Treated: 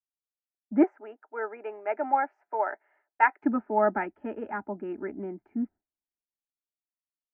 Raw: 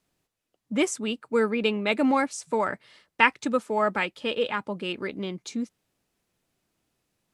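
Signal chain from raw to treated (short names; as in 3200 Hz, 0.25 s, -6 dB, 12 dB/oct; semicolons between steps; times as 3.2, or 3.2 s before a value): 0.83–3.42 HPF 470 Hz 24 dB/oct; gate with hold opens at -50 dBFS; LPF 1400 Hz 24 dB/oct; fixed phaser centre 750 Hz, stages 8; three-band expander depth 40%; gain +3 dB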